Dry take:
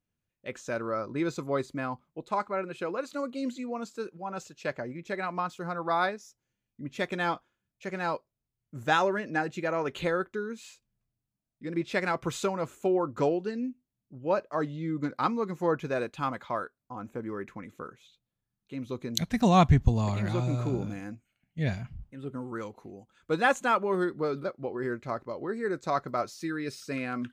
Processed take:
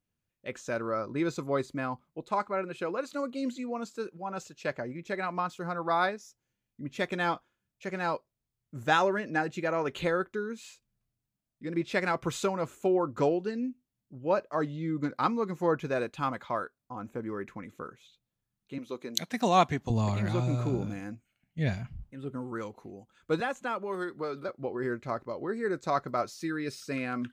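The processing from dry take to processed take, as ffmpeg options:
ffmpeg -i in.wav -filter_complex "[0:a]asettb=1/sr,asplit=3[link_01][link_02][link_03];[link_01]atrim=end=18.784[link_04];[link_02]atrim=start=18.78:end=19.9,asetpts=PTS-STARTPTS,afade=type=in:duration=0.004:curve=qsin,afade=type=out:start_time=1.116:duration=0.004:curve=qsin,highpass=310[link_05];[link_03]atrim=start=19.896[link_06];[link_04][link_05]acrossfade=duration=0.004:curve1=hsin:curve2=qsin[link_07];[link_07][link_06]acrossfade=duration=0.004:curve1=qsin:curve2=hsin,asettb=1/sr,asplit=3[link_08][link_09][link_10];[link_08]atrim=end=23.404[link_11];[link_09]atrim=start=23.4:end=24.49,asetpts=PTS-STARTPTS,afade=type=in:duration=0.004:curve=qsin,afade=type=out:start_time=1.086:duration=0.004:curve=qsin,acrossover=split=250|590|4000[link_12][link_13][link_14][link_15];[link_12]acompressor=threshold=-50dB:ratio=3[link_16];[link_13]acompressor=threshold=-39dB:ratio=3[link_17];[link_14]acompressor=threshold=-35dB:ratio=3[link_18];[link_15]acompressor=threshold=-57dB:ratio=3[link_19];[link_16][link_17][link_18][link_19]amix=inputs=4:normalize=0[link_20];[link_10]atrim=start=24.486[link_21];[link_11][link_20]acrossfade=duration=0.004:curve1=hsin:curve2=qsin[link_22];[link_22][link_21]acrossfade=duration=0.004:curve1=qsin:curve2=hsin" out.wav

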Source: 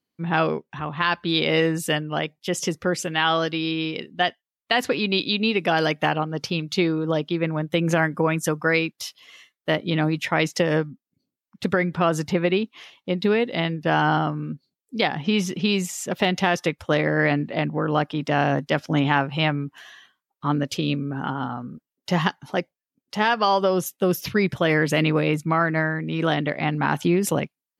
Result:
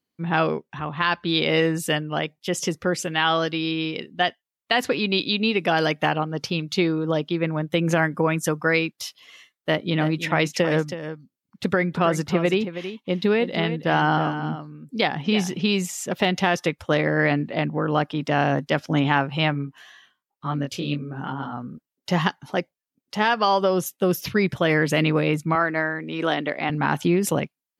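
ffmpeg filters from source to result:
ffmpeg -i in.wav -filter_complex "[0:a]asettb=1/sr,asplit=3[link_01][link_02][link_03];[link_01]atrim=end=0.814[link_04];[link_02]atrim=start=0.81:end=1.39,asetpts=PTS-STARTPTS,afade=type=in:duration=0.004:curve=qsin,afade=type=out:start_time=0.576:duration=0.004:curve=qsin,lowpass=8400[link_05];[link_03]atrim=start=1.386[link_06];[link_04][link_05]acrossfade=duration=0.004:curve1=hsin:curve2=qsin[link_07];[link_07][link_06]acrossfade=duration=0.004:curve1=qsin:curve2=hsin,asplit=3[link_08][link_09][link_10];[link_08]afade=type=out:start_time=9.89:duration=0.02[link_11];[link_09]aecho=1:1:322:0.282,afade=type=in:start_time=9.89:duration=0.02,afade=type=out:start_time=15.55:duration=0.02[link_12];[link_10]afade=type=in:start_time=15.55:duration=0.02[link_13];[link_11][link_12][link_13]amix=inputs=3:normalize=0,asplit=3[link_14][link_15][link_16];[link_14]afade=type=out:start_time=19.53:duration=0.02[link_17];[link_15]flanger=delay=19:depth=4:speed=1.9,afade=type=in:start_time=19.53:duration=0.02,afade=type=out:start_time=21.52:duration=0.02[link_18];[link_16]afade=type=in:start_time=21.52:duration=0.02[link_19];[link_17][link_18][link_19]amix=inputs=3:normalize=0,asettb=1/sr,asplit=3[link_20][link_21][link_22];[link_20]atrim=end=25.554[link_23];[link_21]atrim=start=25.55:end=26.7,asetpts=PTS-STARTPTS,afade=type=in:duration=0.004:curve=qsin,afade=type=out:start_time=1.146:duration=0.004:curve=qsin,highpass=260[link_24];[link_22]atrim=start=26.696[link_25];[link_23][link_24]acrossfade=duration=0.004:curve1=hsin:curve2=qsin[link_26];[link_26][link_25]acrossfade=duration=0.004:curve1=qsin:curve2=hsin" out.wav

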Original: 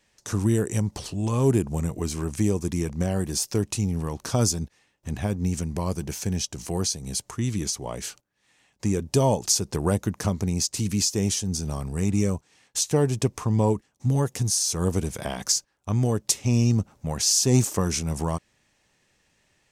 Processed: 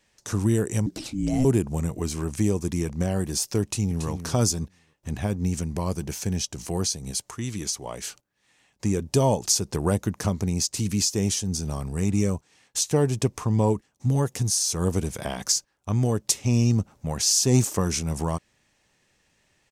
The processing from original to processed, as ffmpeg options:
ffmpeg -i in.wav -filter_complex "[0:a]asettb=1/sr,asplit=3[link_01][link_02][link_03];[link_01]atrim=end=0.864[link_04];[link_02]atrim=start=0.86:end=1.45,asetpts=PTS-STARTPTS,afade=type=in:duration=0.004:curve=qsin,afade=type=out:start_time=0.586:duration=0.004:curve=qsin,afreqshift=-390[link_05];[link_03]atrim=start=1.446[link_06];[link_04][link_05]acrossfade=duration=0.004:curve1=hsin:curve2=qsin[link_07];[link_07][link_06]acrossfade=duration=0.004:curve1=qsin:curve2=hsin,asplit=2[link_08][link_09];[link_09]afade=type=in:start_time=3.62:duration=0.01,afade=type=out:start_time=4.09:duration=0.01,aecho=0:1:280|560|840:0.334965|0.0669931|0.0133986[link_10];[link_08][link_10]amix=inputs=2:normalize=0,asettb=1/sr,asplit=3[link_11][link_12][link_13];[link_11]atrim=end=7.114[link_14];[link_12]atrim=start=7.11:end=8.08,asetpts=PTS-STARTPTS,afade=type=in:duration=0.004:curve=qsin,afade=type=out:start_time=0.966:duration=0.004:curve=qsin,lowshelf=frequency=370:gain=-6[link_15];[link_13]atrim=start=8.076[link_16];[link_14][link_15]acrossfade=duration=0.004:curve1=hsin:curve2=qsin[link_17];[link_17][link_16]acrossfade=duration=0.004:curve1=qsin:curve2=hsin" out.wav

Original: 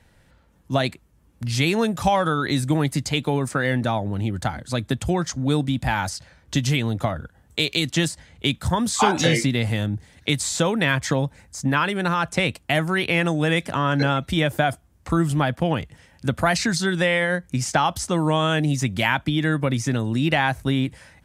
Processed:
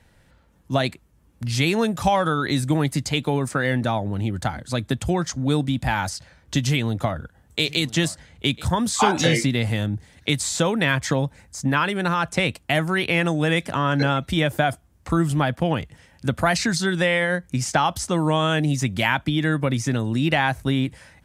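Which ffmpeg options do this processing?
ffmpeg -i in.wav -filter_complex "[0:a]asettb=1/sr,asplit=3[link_01][link_02][link_03];[link_01]atrim=end=6.624[link_04];[link_02]atrim=start=6.62:end=8.65,asetpts=PTS-STARTPTS,afade=type=in:duration=0.004:curve=qsin,afade=type=out:start_time=2.026:duration=0.004:curve=qsin,aecho=1:1:997:0.1,atrim=end_sample=89523[link_05];[link_03]atrim=start=8.646[link_06];[link_04][link_05]acrossfade=duration=0.004:curve1=hsin:curve2=qsin[link_07];[link_07][link_06]acrossfade=duration=0.004:curve1=qsin:curve2=hsin" out.wav

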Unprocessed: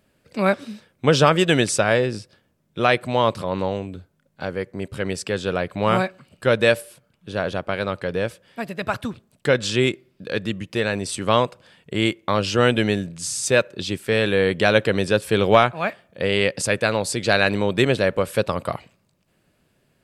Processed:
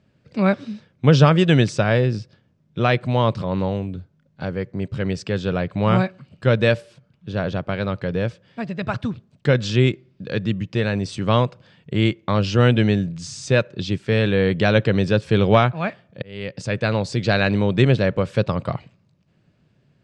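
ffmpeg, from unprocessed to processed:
ffmpeg -i in.wav -filter_complex "[0:a]asplit=2[link_01][link_02];[link_01]atrim=end=16.22,asetpts=PTS-STARTPTS,afade=type=out:start_time=16.216:duration=0.004:curve=hsin[link_03];[link_02]atrim=start=16.22,asetpts=PTS-STARTPTS,afade=type=in:duration=0.7[link_04];[link_03][link_04]concat=n=2:v=0:a=1,deesser=0.4,lowpass=frequency=6300:width=0.5412,lowpass=frequency=6300:width=1.3066,equalizer=frequency=130:width=0.82:gain=11.5,volume=-2.5dB" out.wav

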